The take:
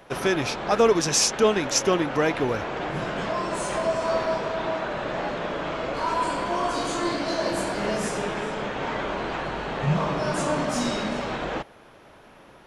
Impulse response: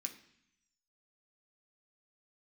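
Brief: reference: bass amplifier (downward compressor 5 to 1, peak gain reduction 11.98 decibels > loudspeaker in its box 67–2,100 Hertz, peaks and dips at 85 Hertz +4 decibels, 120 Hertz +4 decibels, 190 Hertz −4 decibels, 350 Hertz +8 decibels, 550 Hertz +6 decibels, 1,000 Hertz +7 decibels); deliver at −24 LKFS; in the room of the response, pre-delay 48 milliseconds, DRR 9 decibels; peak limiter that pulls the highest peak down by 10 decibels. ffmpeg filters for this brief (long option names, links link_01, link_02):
-filter_complex "[0:a]alimiter=limit=-19.5dB:level=0:latency=1,asplit=2[link_01][link_02];[1:a]atrim=start_sample=2205,adelay=48[link_03];[link_02][link_03]afir=irnorm=-1:irlink=0,volume=-6dB[link_04];[link_01][link_04]amix=inputs=2:normalize=0,acompressor=threshold=-36dB:ratio=5,highpass=frequency=67:width=0.5412,highpass=frequency=67:width=1.3066,equalizer=frequency=85:width_type=q:width=4:gain=4,equalizer=frequency=120:width_type=q:width=4:gain=4,equalizer=frequency=190:width_type=q:width=4:gain=-4,equalizer=frequency=350:width_type=q:width=4:gain=8,equalizer=frequency=550:width_type=q:width=4:gain=6,equalizer=frequency=1000:width_type=q:width=4:gain=7,lowpass=frequency=2100:width=0.5412,lowpass=frequency=2100:width=1.3066,volume=10.5dB"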